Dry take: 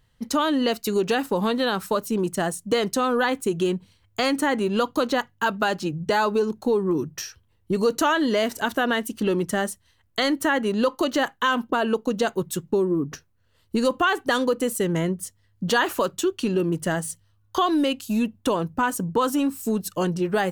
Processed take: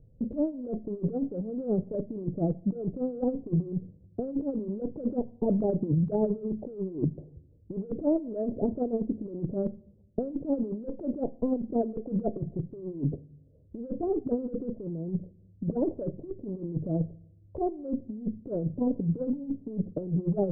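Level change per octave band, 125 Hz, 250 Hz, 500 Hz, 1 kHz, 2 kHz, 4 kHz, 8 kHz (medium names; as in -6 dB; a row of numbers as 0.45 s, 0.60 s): 0.0 dB, -5.0 dB, -8.5 dB, -19.0 dB, under -40 dB, under -40 dB, under -40 dB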